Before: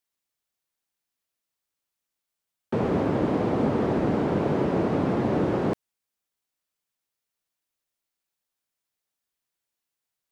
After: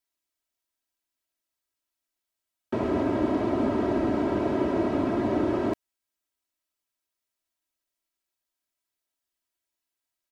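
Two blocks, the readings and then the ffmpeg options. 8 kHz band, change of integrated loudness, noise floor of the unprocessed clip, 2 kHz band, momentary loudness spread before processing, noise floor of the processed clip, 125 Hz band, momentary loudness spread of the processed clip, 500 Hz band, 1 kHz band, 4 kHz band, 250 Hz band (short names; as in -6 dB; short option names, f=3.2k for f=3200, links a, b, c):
n/a, -1.5 dB, under -85 dBFS, -1.5 dB, 4 LU, under -85 dBFS, -7.0 dB, 4 LU, -1.5 dB, -1.5 dB, -1.0 dB, -0.5 dB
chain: -af "aecho=1:1:3.1:0.72,volume=-3dB"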